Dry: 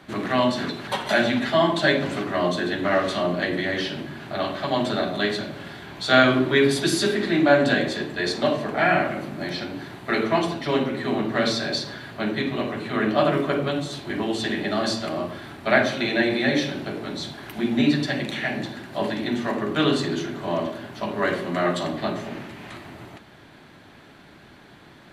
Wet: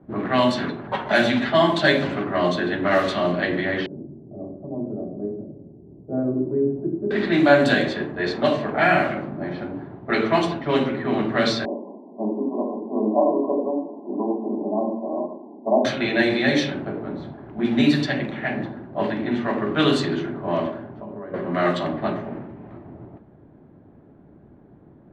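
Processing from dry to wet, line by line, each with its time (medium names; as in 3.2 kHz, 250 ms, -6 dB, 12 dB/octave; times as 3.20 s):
2.91–3.32 s: treble shelf 10 kHz +11.5 dB
3.86–7.11 s: four-pole ladder low-pass 560 Hz, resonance 25%
11.65–15.85 s: brick-wall FIR band-pass 190–1100 Hz
20.81–21.34 s: compression, threshold -32 dBFS
whole clip: level-controlled noise filter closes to 430 Hz, open at -15.5 dBFS; trim +2 dB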